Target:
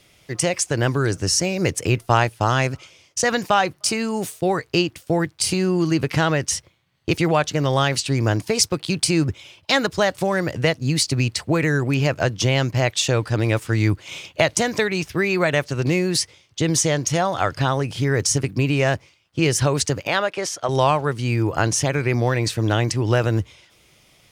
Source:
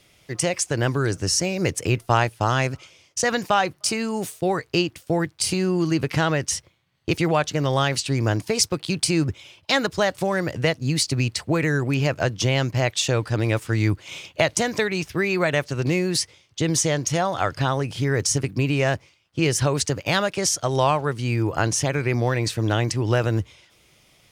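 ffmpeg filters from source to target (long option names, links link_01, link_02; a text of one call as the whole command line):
ffmpeg -i in.wav -filter_complex "[0:a]asettb=1/sr,asplit=3[link_01][link_02][link_03];[link_01]atrim=end=20.074[link_04];[link_02]atrim=start=20.07:end=20.69,asetpts=PTS-STARTPTS,afade=type=in:duration=0.004:curve=qsin,afade=type=out:start_time=0.616:duration=0.004:curve=qsin,bass=frequency=250:gain=-13,treble=frequency=4000:gain=-10[link_05];[link_03]atrim=start=20.686[link_06];[link_04][link_05]acrossfade=duration=0.004:curve1=hsin:curve2=qsin[link_07];[link_07][link_06]acrossfade=duration=0.004:curve1=qsin:curve2=hsin,volume=2dB" out.wav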